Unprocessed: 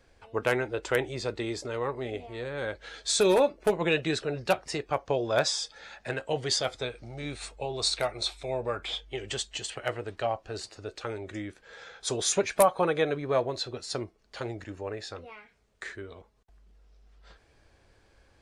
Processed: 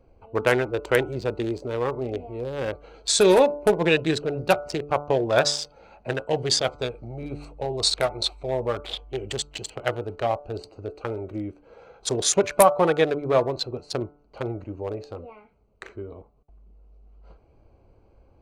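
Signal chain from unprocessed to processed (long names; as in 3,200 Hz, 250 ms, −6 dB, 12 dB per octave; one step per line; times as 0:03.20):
adaptive Wiener filter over 25 samples
hum removal 145.9 Hz, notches 10
level +6.5 dB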